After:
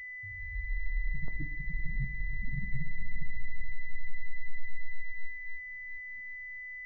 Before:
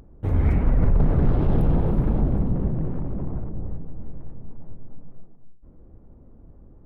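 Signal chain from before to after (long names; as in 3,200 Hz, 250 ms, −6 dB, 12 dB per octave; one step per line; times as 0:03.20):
expanding power law on the bin magnitudes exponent 3.4
noise gate −35 dBFS, range −9 dB
gate on every frequency bin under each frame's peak −15 dB strong
brickwall limiter −23 dBFS, peak gain reduction 29.5 dB
reversed playback
downward compressor 6 to 1, threshold −37 dBFS, peak gain reduction 11.5 dB
reversed playback
surface crackle 240 per second −57 dBFS
noise reduction from a noise print of the clip's start 15 dB
on a send: feedback delay with all-pass diffusion 452 ms, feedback 56%, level −16 dB
on the sum: rectangular room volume 130 cubic metres, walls mixed, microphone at 0.32 metres
switching amplifier with a slow clock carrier 2,000 Hz
level +5.5 dB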